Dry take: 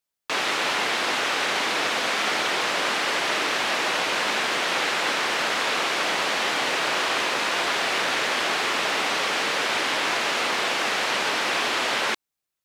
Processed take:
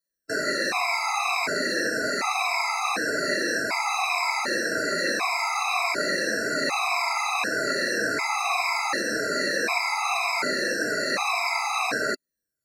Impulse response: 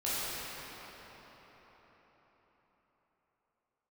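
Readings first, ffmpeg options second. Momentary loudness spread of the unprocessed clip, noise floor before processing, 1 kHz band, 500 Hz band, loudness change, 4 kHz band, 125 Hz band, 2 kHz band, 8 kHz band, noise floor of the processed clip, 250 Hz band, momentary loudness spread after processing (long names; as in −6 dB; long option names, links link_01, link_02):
0 LU, −84 dBFS, −1.0 dB, 0.0 dB, −2.0 dB, −6.0 dB, +0.5 dB, −1.0 dB, −1.0 dB, −85 dBFS, +2.0 dB, 1 LU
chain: -af "afftfilt=real='re*pow(10,13/40*sin(2*PI*(1.7*log(max(b,1)*sr/1024/100)/log(2)-(-1.8)*(pts-256)/sr)))':imag='im*pow(10,13/40*sin(2*PI*(1.7*log(max(b,1)*sr/1024/100)/log(2)-(-1.8)*(pts-256)/sr)))':win_size=1024:overlap=0.75,adynamicequalizer=threshold=0.00631:dfrequency=270:dqfactor=1.1:tfrequency=270:tqfactor=1.1:attack=5:release=100:ratio=0.375:range=2:mode=boostabove:tftype=bell,asuperstop=centerf=3200:order=20:qfactor=2.8,afftfilt=real='re*gt(sin(2*PI*0.67*pts/sr)*(1-2*mod(floor(b*sr/1024/670),2)),0)':imag='im*gt(sin(2*PI*0.67*pts/sr)*(1-2*mod(floor(b*sr/1024/670),2)),0)':win_size=1024:overlap=0.75"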